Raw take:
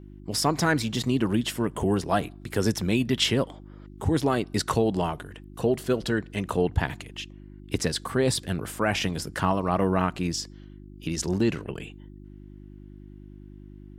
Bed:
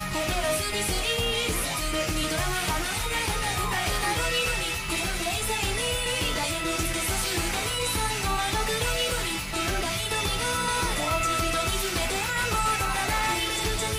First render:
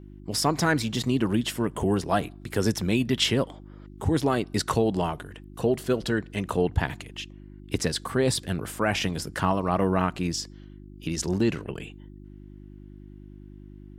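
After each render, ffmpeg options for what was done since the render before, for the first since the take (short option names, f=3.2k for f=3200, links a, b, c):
-af anull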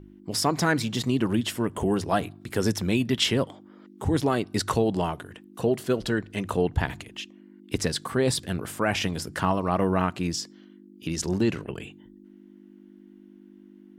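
-af "bandreject=f=50:t=h:w=4,bandreject=f=100:t=h:w=4,bandreject=f=150:t=h:w=4"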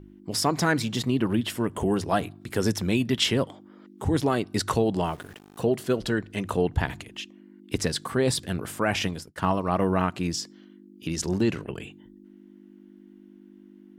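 -filter_complex "[0:a]asettb=1/sr,asplit=3[a][b][c];[a]atrim=end=1.034[d];[b]atrim=start=1.03:end=1.5,asetpts=PTS-STARTPTS,afade=t=in:d=0.004:c=qsin,afade=t=out:st=0.466:d=0.004:c=qsin,equalizer=f=6.7k:w=1.5:g=-9.5[e];[c]atrim=start=1.496[f];[d][e]acrossfade=d=0.004:c1=hsin:c2=qsin[g];[g][f]acrossfade=d=0.004:c1=qsin:c2=hsin,asettb=1/sr,asplit=3[h][i][j];[h]atrim=end=5.074[k];[i]atrim=start=5.07:end=5.63,asetpts=PTS-STARTPTS,afade=t=in:d=0.004:c=qsin,afade=t=out:st=0.556:d=0.004:c=qsin,aeval=exprs='val(0)*gte(abs(val(0)),0.00501)':c=same[l];[j]atrim=start=5.626[m];[k][l]acrossfade=d=0.004:c1=hsin:c2=qsin[n];[n][m]acrossfade=d=0.004:c1=qsin:c2=hsin,asplit=3[o][p][q];[o]afade=t=out:st=9.04:d=0.02[r];[p]agate=range=-33dB:threshold=-27dB:ratio=3:release=100:detection=peak,afade=t=in:st=9.04:d=0.02,afade=t=out:st=10.11:d=0.02[s];[q]afade=t=in:st=10.11:d=0.02[t];[r][s][t]amix=inputs=3:normalize=0"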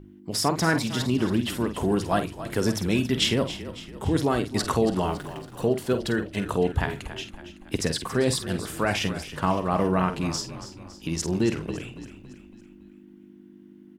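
-filter_complex "[0:a]asplit=2[a][b];[b]adelay=49,volume=-10dB[c];[a][c]amix=inputs=2:normalize=0,asplit=6[d][e][f][g][h][i];[e]adelay=279,afreqshift=-31,volume=-13dB[j];[f]adelay=558,afreqshift=-62,volume=-19dB[k];[g]adelay=837,afreqshift=-93,volume=-25dB[l];[h]adelay=1116,afreqshift=-124,volume=-31.1dB[m];[i]adelay=1395,afreqshift=-155,volume=-37.1dB[n];[d][j][k][l][m][n]amix=inputs=6:normalize=0"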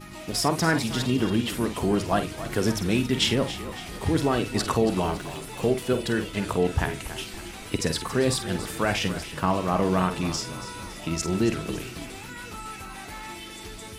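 -filter_complex "[1:a]volume=-13dB[a];[0:a][a]amix=inputs=2:normalize=0"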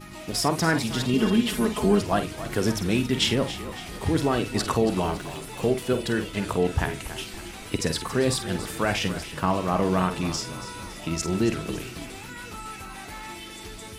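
-filter_complex "[0:a]asettb=1/sr,asplit=3[a][b][c];[a]atrim=end=1.134[d];[b]atrim=start=1.13:end=2.01,asetpts=PTS-STARTPTS,afade=t=in:d=0.004:c=qsin,afade=t=out:st=0.876:d=0.004:c=qsin,aecho=1:1:4.7:0.85,atrim=end_sample=38808[e];[c]atrim=start=2.006[f];[d][e]acrossfade=d=0.004:c1=hsin:c2=qsin[g];[g][f]acrossfade=d=0.004:c1=qsin:c2=hsin"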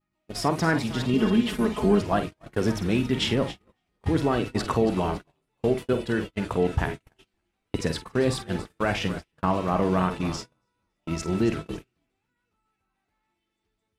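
-af "agate=range=-38dB:threshold=-29dB:ratio=16:detection=peak,highshelf=f=4.5k:g=-10.5"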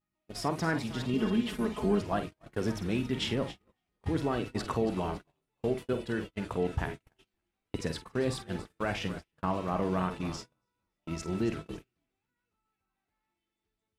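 -af "volume=-7dB"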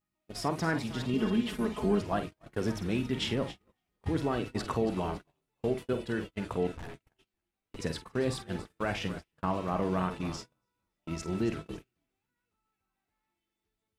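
-filter_complex "[0:a]asettb=1/sr,asplit=3[a][b][c];[a]atrim=end=6.724[d];[b]atrim=start=6.72:end=7.79,asetpts=PTS-STARTPTS,afade=t=in:d=0.004:c=qsin,afade=t=out:st=1.066:d=0.004:c=qsin,aeval=exprs='(tanh(100*val(0)+0.7)-tanh(0.7))/100':c=same[e];[c]atrim=start=7.786[f];[d][e]acrossfade=d=0.004:c1=hsin:c2=qsin[g];[g][f]acrossfade=d=0.004:c1=qsin:c2=hsin"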